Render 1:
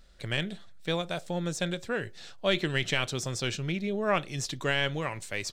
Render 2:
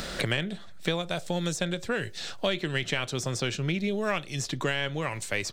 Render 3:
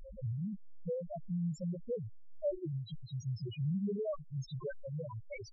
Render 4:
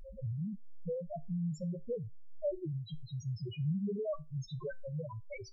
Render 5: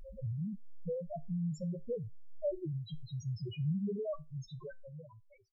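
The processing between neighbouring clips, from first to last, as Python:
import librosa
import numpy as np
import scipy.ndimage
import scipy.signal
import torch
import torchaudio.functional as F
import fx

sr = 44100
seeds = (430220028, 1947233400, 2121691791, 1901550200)

y1 = fx.band_squash(x, sr, depth_pct=100)
y2 = fx.spec_topn(y1, sr, count=1)
y2 = y2 * 10.0 ** (1.0 / 20.0)
y3 = fx.comb_fb(y2, sr, f0_hz=77.0, decay_s=0.22, harmonics='all', damping=0.0, mix_pct=40)
y3 = y3 * 10.0 ** (3.0 / 20.0)
y4 = fx.fade_out_tail(y3, sr, length_s=1.69)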